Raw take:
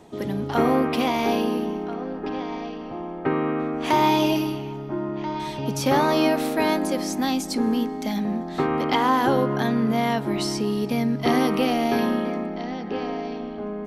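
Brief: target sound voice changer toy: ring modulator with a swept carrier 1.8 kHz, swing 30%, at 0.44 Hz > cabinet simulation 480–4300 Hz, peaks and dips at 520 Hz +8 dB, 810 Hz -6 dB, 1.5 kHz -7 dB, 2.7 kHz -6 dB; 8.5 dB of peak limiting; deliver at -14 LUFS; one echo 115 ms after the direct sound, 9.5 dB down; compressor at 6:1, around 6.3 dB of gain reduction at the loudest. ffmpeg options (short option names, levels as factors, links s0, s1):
-af "acompressor=threshold=0.0794:ratio=6,alimiter=limit=0.119:level=0:latency=1,aecho=1:1:115:0.335,aeval=exprs='val(0)*sin(2*PI*1800*n/s+1800*0.3/0.44*sin(2*PI*0.44*n/s))':c=same,highpass=480,equalizer=f=520:t=q:w=4:g=8,equalizer=f=810:t=q:w=4:g=-6,equalizer=f=1500:t=q:w=4:g=-7,equalizer=f=2700:t=q:w=4:g=-6,lowpass=f=4300:w=0.5412,lowpass=f=4300:w=1.3066,volume=7.94"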